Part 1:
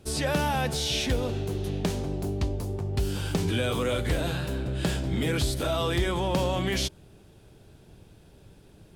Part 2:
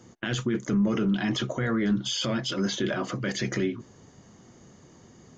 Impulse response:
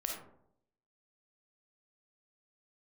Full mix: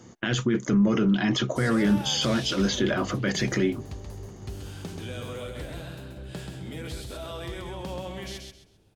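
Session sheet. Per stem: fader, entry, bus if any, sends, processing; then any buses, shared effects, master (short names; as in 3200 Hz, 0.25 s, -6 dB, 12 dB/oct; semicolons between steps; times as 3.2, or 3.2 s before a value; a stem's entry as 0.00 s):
-11.0 dB, 1.50 s, no send, echo send -4.5 dB, dry
+3.0 dB, 0.00 s, no send, no echo send, dry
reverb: off
echo: feedback echo 0.131 s, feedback 27%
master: dry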